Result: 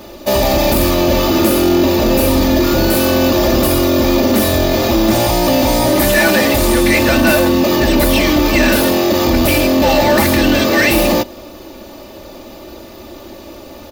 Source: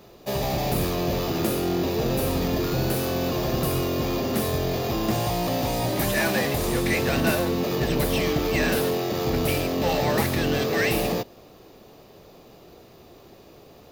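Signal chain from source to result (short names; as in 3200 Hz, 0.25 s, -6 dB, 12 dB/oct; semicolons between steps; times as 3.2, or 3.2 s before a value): comb 3.4 ms, depth 81%; in parallel at +2 dB: limiter -19 dBFS, peak gain reduction 11.5 dB; on the sum: soft clip -9 dBFS, distortion -23 dB; gain +6.5 dB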